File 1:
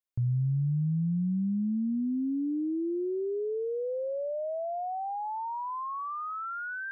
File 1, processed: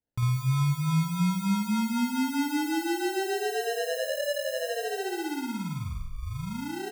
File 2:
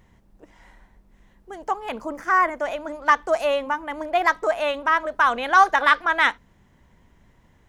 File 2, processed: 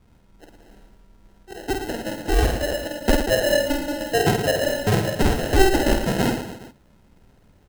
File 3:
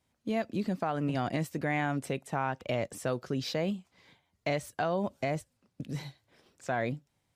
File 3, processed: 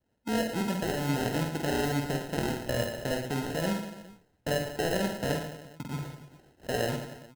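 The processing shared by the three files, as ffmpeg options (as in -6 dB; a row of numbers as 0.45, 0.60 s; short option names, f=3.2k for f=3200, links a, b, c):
-af "adynamicequalizer=threshold=0.0178:dfrequency=1600:dqfactor=1.7:tfrequency=1600:tqfactor=1.7:attack=5:release=100:ratio=0.375:range=3:mode=cutabove:tftype=bell,acrusher=samples=38:mix=1:aa=0.000001,aecho=1:1:50|112.5|190.6|288.3|410.4:0.631|0.398|0.251|0.158|0.1"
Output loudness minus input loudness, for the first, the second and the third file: +2.5, -1.0, +2.0 LU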